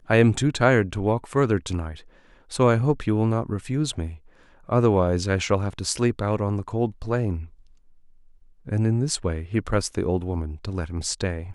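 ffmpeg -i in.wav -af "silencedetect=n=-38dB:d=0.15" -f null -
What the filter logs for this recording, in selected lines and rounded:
silence_start: 2.00
silence_end: 2.51 | silence_duration: 0.51
silence_start: 4.16
silence_end: 4.69 | silence_duration: 0.53
silence_start: 7.46
silence_end: 8.67 | silence_duration: 1.21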